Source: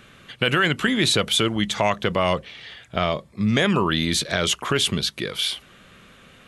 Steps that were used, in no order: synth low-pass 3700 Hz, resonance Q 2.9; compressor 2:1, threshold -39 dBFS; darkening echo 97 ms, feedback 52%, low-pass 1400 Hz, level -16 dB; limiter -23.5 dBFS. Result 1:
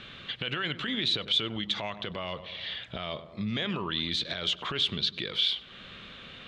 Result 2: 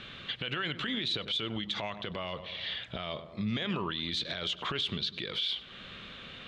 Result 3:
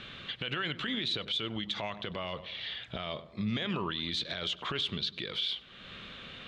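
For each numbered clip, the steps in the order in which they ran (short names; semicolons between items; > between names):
darkening echo > compressor > limiter > synth low-pass; darkening echo > compressor > synth low-pass > limiter; synth low-pass > compressor > darkening echo > limiter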